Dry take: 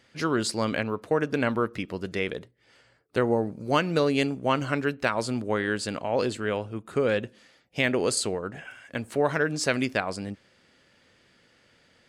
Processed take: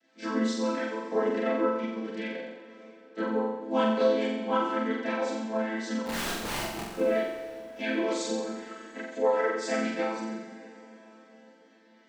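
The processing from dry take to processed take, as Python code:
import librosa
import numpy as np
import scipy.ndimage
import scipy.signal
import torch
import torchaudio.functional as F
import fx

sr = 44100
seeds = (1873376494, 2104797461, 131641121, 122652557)

y = fx.chord_vocoder(x, sr, chord='minor triad', root=57)
y = fx.tilt_eq(y, sr, slope=1.5)
y = fx.overflow_wrap(y, sr, gain_db=29.0, at=(6.06, 6.93))
y = fx.chorus_voices(y, sr, voices=4, hz=0.31, base_ms=30, depth_ms=3.2, mix_pct=65)
y = fx.room_flutter(y, sr, wall_m=7.6, rt60_s=0.88)
y = fx.rev_plate(y, sr, seeds[0], rt60_s=4.9, hf_ratio=0.8, predelay_ms=0, drr_db=12.0)
y = y * 10.0 ** (2.0 / 20.0)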